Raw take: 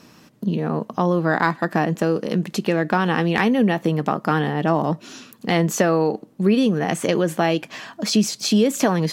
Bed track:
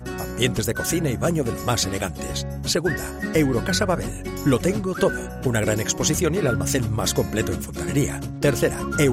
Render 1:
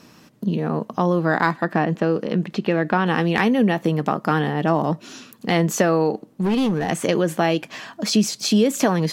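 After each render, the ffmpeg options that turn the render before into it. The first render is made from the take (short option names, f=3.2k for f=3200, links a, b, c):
-filter_complex "[0:a]asettb=1/sr,asplit=3[a][b][c];[a]atrim=end=1.584[d];[b]atrim=start=1.58:end=3.07,asetpts=PTS-STARTPTS,afade=t=in:d=0.004:c=qsin,afade=t=out:st=1.486:d=0.004:c=qsin,acrossover=split=4300[e][f];[f]acompressor=threshold=-59dB:ratio=4:attack=1:release=60[g];[e][g]amix=inputs=2:normalize=0[h];[c]atrim=start=3.066[i];[d][h]acrossfade=d=0.004:c1=hsin:c2=qsin[j];[j][i]acrossfade=d=0.004:c1=qsin:c2=hsin,asettb=1/sr,asplit=3[k][l][m];[k]atrim=end=6.264[n];[l]atrim=start=6.26:end=6.9,asetpts=PTS-STARTPTS,afade=t=in:d=0.004:c=qsin,afade=t=out:st=0.636:d=0.004:c=qsin,asoftclip=type=hard:threshold=-16.5dB[o];[m]atrim=start=6.896[p];[n][o]acrossfade=d=0.004:c1=hsin:c2=qsin[q];[q][p]acrossfade=d=0.004:c1=qsin:c2=hsin"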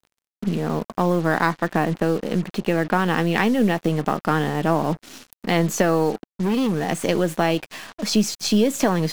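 -af "aeval=exprs='if(lt(val(0),0),0.708*val(0),val(0))':c=same,acrusher=bits=5:mix=0:aa=0.5"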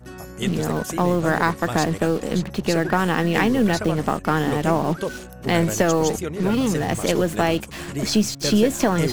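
-filter_complex "[1:a]volume=-7.5dB[a];[0:a][a]amix=inputs=2:normalize=0"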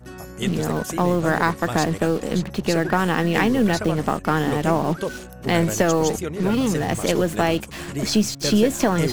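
-af anull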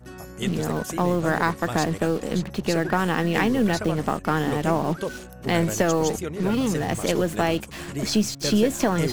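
-af "volume=-2.5dB"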